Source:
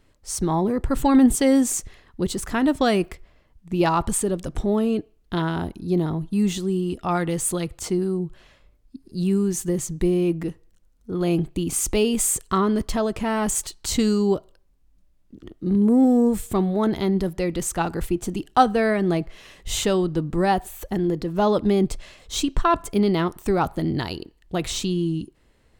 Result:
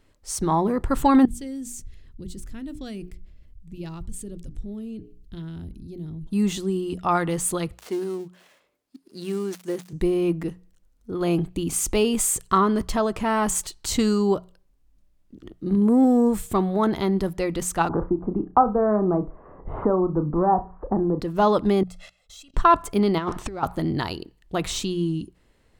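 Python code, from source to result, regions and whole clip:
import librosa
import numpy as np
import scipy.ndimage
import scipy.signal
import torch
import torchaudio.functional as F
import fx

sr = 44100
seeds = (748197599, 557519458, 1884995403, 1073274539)

y = fx.chain(x, sr, fx.tone_stack(knobs='10-0-1'),
    fx.hum_notches(base_hz=60, count=7),
    fx.env_flatten(amount_pct=50), at=(1.25, 6.27))
y = fx.chain(y, sr, fx.dead_time(dead_ms=0.085),
    fx.highpass(hz=320.0, slope=12), at=(7.72, 9.93))
y = fx.chain(y, sr, fx.steep_lowpass(hz=1200.0, slope=36),
    fx.room_flutter(wall_m=5.7, rt60_s=0.2),
    fx.band_squash(depth_pct=70), at=(17.89, 21.2))
y = fx.chain(y, sr, fx.low_shelf(hz=470.0, db=-7.5),
    fx.level_steps(step_db=23),
    fx.comb(ms=1.5, depth=0.77), at=(21.83, 22.54))
y = fx.chain(y, sr, fx.law_mismatch(coded='mu'),
    fx.lowpass(hz=5900.0, slope=12),
    fx.over_compress(threshold_db=-26.0, ratio=-0.5), at=(23.18, 23.63))
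y = fx.hum_notches(y, sr, base_hz=60, count=3)
y = fx.dynamic_eq(y, sr, hz=1100.0, q=1.4, threshold_db=-39.0, ratio=4.0, max_db=6)
y = y * librosa.db_to_amplitude(-1.0)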